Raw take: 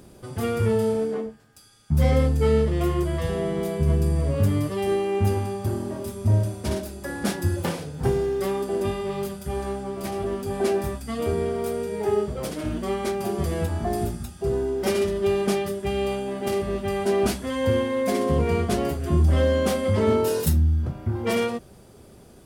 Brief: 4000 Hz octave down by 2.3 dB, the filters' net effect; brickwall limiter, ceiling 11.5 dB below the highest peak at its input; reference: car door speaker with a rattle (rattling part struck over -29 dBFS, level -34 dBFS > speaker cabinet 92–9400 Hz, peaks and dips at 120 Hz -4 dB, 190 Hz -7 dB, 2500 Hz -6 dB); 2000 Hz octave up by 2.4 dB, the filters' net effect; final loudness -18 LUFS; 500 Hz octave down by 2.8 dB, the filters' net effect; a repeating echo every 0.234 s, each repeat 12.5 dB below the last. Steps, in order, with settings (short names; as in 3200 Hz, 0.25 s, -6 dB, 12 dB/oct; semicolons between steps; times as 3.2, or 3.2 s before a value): bell 500 Hz -3.5 dB; bell 2000 Hz +6 dB; bell 4000 Hz -4 dB; limiter -20.5 dBFS; feedback echo 0.234 s, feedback 24%, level -12.5 dB; rattling part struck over -29 dBFS, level -34 dBFS; speaker cabinet 92–9400 Hz, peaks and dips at 120 Hz -4 dB, 190 Hz -7 dB, 2500 Hz -6 dB; gain +13 dB